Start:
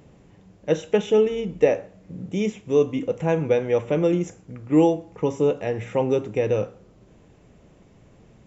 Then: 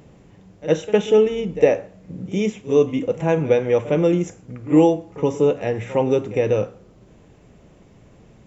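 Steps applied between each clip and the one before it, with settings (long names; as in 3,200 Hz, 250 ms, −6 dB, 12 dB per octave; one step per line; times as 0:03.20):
backwards echo 58 ms −16.5 dB
level +3 dB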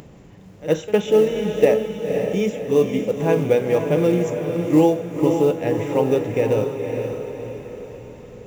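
upward compression, threshold −37 dBFS
floating-point word with a short mantissa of 4 bits
feedback delay with all-pass diffusion 522 ms, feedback 48%, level −5.5 dB
level −1 dB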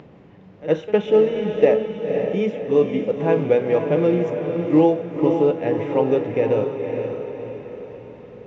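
high-pass filter 180 Hz 6 dB per octave
high-frequency loss of the air 270 metres
level +1.5 dB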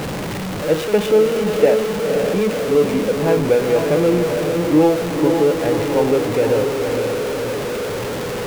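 converter with a step at zero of −19.5 dBFS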